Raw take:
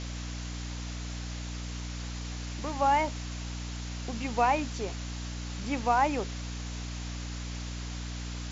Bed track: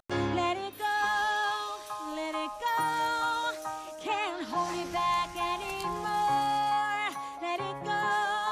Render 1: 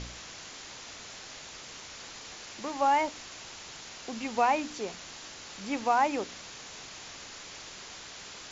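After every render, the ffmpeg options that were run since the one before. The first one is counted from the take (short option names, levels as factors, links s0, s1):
-af "bandreject=f=60:t=h:w=4,bandreject=f=120:t=h:w=4,bandreject=f=180:t=h:w=4,bandreject=f=240:t=h:w=4,bandreject=f=300:t=h:w=4"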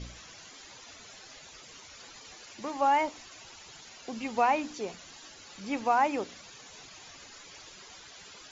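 -af "afftdn=nr=12:nf=-46"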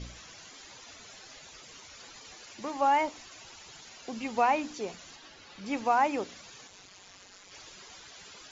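-filter_complex "[0:a]asettb=1/sr,asplit=3[s0][s1][s2];[s0]atrim=end=5.164[s3];[s1]atrim=start=5.16:end=5.66,asetpts=PTS-STARTPTS,afade=t=in:d=0.004:c=qsin,afade=t=out:st=0.496:d=0.004:c=qsin,lowpass=4500[s4];[s2]atrim=start=5.656[s5];[s3][s4]acrossfade=d=0.004:c1=hsin:c2=qsin[s6];[s6][s5]acrossfade=d=0.004:c1=qsin:c2=hsin,asplit=3[s7][s8][s9];[s7]afade=t=out:st=6.66:d=0.02[s10];[s8]tremolo=f=190:d=0.824,afade=t=in:st=6.66:d=0.02,afade=t=out:st=7.51:d=0.02[s11];[s9]afade=t=in:st=7.51:d=0.02[s12];[s10][s11][s12]amix=inputs=3:normalize=0"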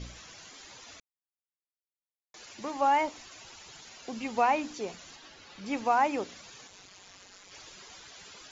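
-filter_complex "[0:a]asplit=3[s0][s1][s2];[s0]atrim=end=1,asetpts=PTS-STARTPTS,afade=t=out:st=0.996:d=0.004:c=hsin[s3];[s1]atrim=start=1:end=2.34,asetpts=PTS-STARTPTS,volume=0[s4];[s2]atrim=start=2.34,asetpts=PTS-STARTPTS,afade=t=in:d=0.004:c=hsin[s5];[s3][s4][s5]concat=n=3:v=0:a=1"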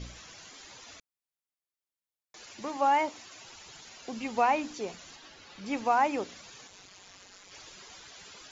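-filter_complex "[0:a]asettb=1/sr,asplit=3[s0][s1][s2];[s0]atrim=end=2.774[s3];[s1]atrim=start=2.77:end=3.48,asetpts=PTS-STARTPTS,afade=t=in:d=0.004:c=qsin,afade=t=out:st=0.706:d=0.004:c=qsin,highpass=95[s4];[s2]atrim=start=3.476[s5];[s3][s4]acrossfade=d=0.004:c1=hsin:c2=qsin[s6];[s6][s5]acrossfade=d=0.004:c1=qsin:c2=hsin"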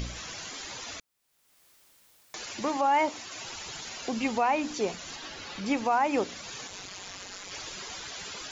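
-filter_complex "[0:a]asplit=2[s0][s1];[s1]acompressor=mode=upward:threshold=0.0126:ratio=2.5,volume=1.19[s2];[s0][s2]amix=inputs=2:normalize=0,alimiter=limit=0.15:level=0:latency=1:release=171"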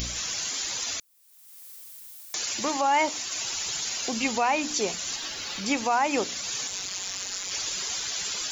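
-af "crystalizer=i=4:c=0"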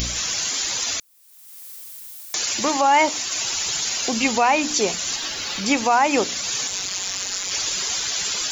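-af "volume=2.11"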